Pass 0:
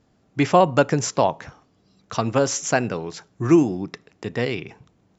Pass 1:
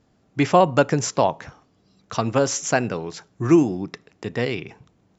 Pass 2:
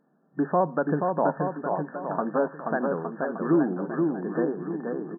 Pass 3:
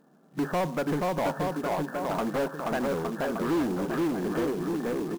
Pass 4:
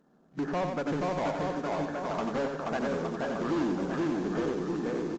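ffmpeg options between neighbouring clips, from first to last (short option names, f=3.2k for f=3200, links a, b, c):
-af anull
-af "alimiter=limit=-9dB:level=0:latency=1:release=165,aecho=1:1:480|864|1171|1417|1614:0.631|0.398|0.251|0.158|0.1,afftfilt=real='re*between(b*sr/4096,140,1800)':imag='im*between(b*sr/4096,140,1800)':win_size=4096:overlap=0.75,volume=-3dB"
-filter_complex "[0:a]asplit=2[a][b];[b]acompressor=threshold=-31dB:ratio=6,volume=-1.5dB[c];[a][c]amix=inputs=2:normalize=0,asoftclip=type=tanh:threshold=-25dB,acrusher=bits=4:mode=log:mix=0:aa=0.000001,volume=1dB"
-af "aecho=1:1:91|182|273|364|455:0.531|0.202|0.0767|0.0291|0.0111,aresample=16000,aresample=44100,volume=-3.5dB" -ar 48000 -c:a libopus -b:a 32k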